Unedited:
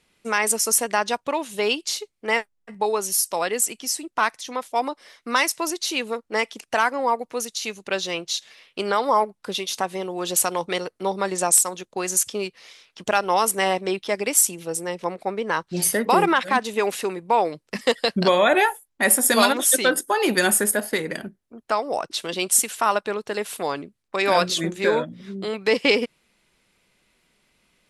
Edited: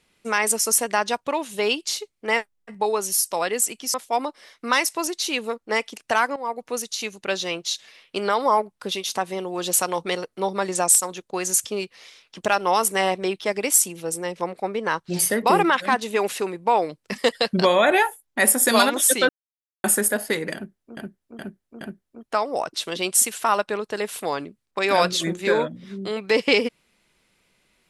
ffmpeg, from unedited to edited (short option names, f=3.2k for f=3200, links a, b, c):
-filter_complex "[0:a]asplit=8[a][b][c][d][e][f][g][h];[a]atrim=end=3.942[i];[b]atrim=start=4.568:end=6.99,asetpts=PTS-STARTPTS,afade=t=out:st=2.418:d=0.004:c=hsin:silence=0.16788[j];[c]atrim=start=6.99:end=19.92,asetpts=PTS-STARTPTS,afade=t=in:d=0.32:silence=0.16788,afade=t=out:st=12.926:d=0.004:c=hsin[k];[d]atrim=start=19.92:end=20.47,asetpts=PTS-STARTPTS,volume=0[l];[e]atrim=start=20.47:end=21.602,asetpts=PTS-STARTPTS,afade=t=in:d=0.004:c=hsin[m];[f]atrim=start=21.178:end=21.602[n];[g]atrim=start=21.178:end=21.602[o];[h]atrim=start=21.178[p];[j][k][l][m]concat=n=4:v=0:a=1[q];[i][q]acrossfade=d=0.004:c1=hsin:c2=hsin[r];[r][n]acrossfade=d=0.004:c1=hsin:c2=hsin[s];[s][o]acrossfade=d=0.004:c1=hsin:c2=hsin[t];[t][p]acrossfade=d=0.004:c1=hsin:c2=hsin"